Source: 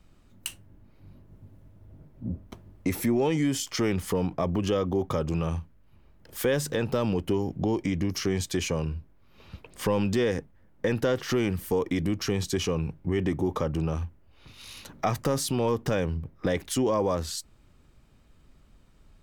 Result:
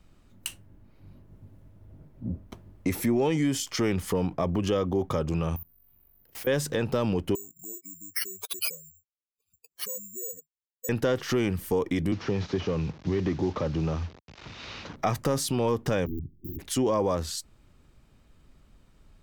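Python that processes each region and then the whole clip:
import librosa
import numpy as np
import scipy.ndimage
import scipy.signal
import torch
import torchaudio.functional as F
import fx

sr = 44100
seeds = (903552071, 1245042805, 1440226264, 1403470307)

y = fx.chain(x, sr, fx.level_steps(step_db=22),
    fx.resample_bad(factor=3, down='none', up='zero_stuff'), at=(5.56, 6.47))
y = fx.chain(y, sr, fx.spec_expand(power=3.0),
    fx.bandpass_q(hz=3400.0, q=1.1),
    fx.resample_bad(factor=6, down='none', up='zero_stuff'), at=(7.35, 10.89))
y = fx.chain(y, sr, fx.delta_mod(bps=32000, step_db=-43.0),
    fx.highpass(hz=53.0, slope=12),
    fx.band_squash(depth_pct=40), at=(12.12, 14.96))
y = fx.chain(y, sr, fx.overflow_wrap(gain_db=25.5),
    fx.brickwall_bandstop(low_hz=400.0, high_hz=14000.0), at=(16.06, 16.59))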